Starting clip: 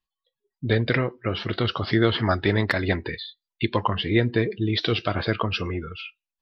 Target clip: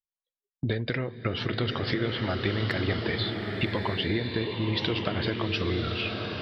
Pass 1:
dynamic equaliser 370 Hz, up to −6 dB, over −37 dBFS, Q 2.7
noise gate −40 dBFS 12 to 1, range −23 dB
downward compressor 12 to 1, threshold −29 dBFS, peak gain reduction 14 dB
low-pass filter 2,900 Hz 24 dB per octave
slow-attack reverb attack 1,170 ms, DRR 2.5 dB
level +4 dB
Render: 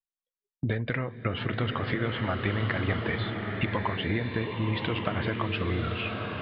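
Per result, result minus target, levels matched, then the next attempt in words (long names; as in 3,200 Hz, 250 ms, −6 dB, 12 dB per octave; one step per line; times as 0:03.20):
4,000 Hz band −5.0 dB; 1,000 Hz band +3.5 dB
dynamic equaliser 370 Hz, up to −6 dB, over −37 dBFS, Q 2.7
noise gate −40 dBFS 12 to 1, range −23 dB
downward compressor 12 to 1, threshold −29 dBFS, peak gain reduction 14 dB
slow-attack reverb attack 1,170 ms, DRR 2.5 dB
level +4 dB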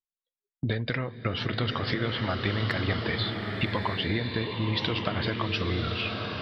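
1,000 Hz band +2.5 dB
dynamic equaliser 1,100 Hz, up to −6 dB, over −37 dBFS, Q 2.7
noise gate −40 dBFS 12 to 1, range −23 dB
downward compressor 12 to 1, threshold −29 dBFS, peak gain reduction 15.5 dB
slow-attack reverb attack 1,170 ms, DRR 2.5 dB
level +4 dB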